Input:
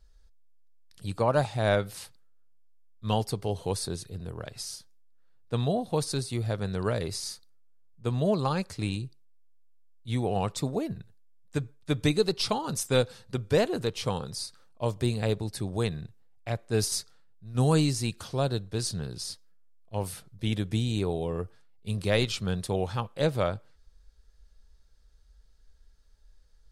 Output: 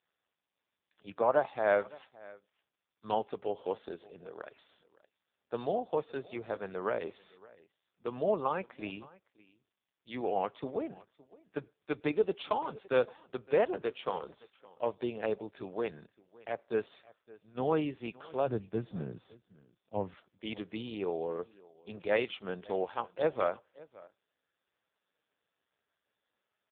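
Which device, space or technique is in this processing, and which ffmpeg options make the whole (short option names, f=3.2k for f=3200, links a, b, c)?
satellite phone: -filter_complex "[0:a]asplit=3[a][b][c];[a]afade=t=out:st=18.46:d=0.02[d];[b]bass=f=250:g=15,treble=f=4k:g=-13,afade=t=in:st=18.46:d=0.02,afade=t=out:st=20.13:d=0.02[e];[c]afade=t=in:st=20.13:d=0.02[f];[d][e][f]amix=inputs=3:normalize=0,highpass=390,lowpass=3.1k,aecho=1:1:564:0.0794" -ar 8000 -c:a libopencore_amrnb -b:a 5150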